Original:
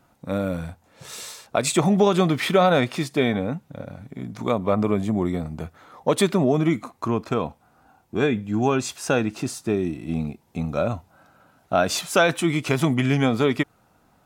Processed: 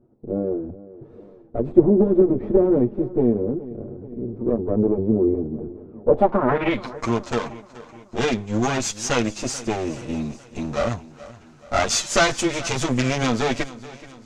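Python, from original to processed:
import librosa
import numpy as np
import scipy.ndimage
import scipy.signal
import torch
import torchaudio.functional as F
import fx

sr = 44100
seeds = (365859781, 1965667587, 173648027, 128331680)

p1 = fx.lower_of_two(x, sr, delay_ms=8.6)
p2 = fx.filter_sweep_lowpass(p1, sr, from_hz=380.0, to_hz=6600.0, start_s=6.01, end_s=6.98, q=2.9)
p3 = p2 + fx.echo_feedback(p2, sr, ms=427, feedback_pct=53, wet_db=-18, dry=0)
y = F.gain(torch.from_numpy(p3), 2.0).numpy()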